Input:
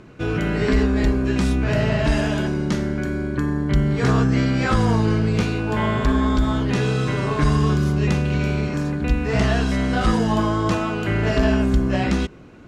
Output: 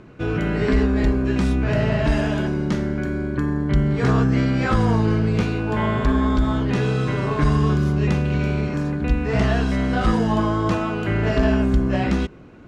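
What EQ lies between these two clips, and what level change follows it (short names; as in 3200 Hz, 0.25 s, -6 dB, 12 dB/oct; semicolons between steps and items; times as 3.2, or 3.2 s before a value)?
high shelf 3900 Hz -7.5 dB; 0.0 dB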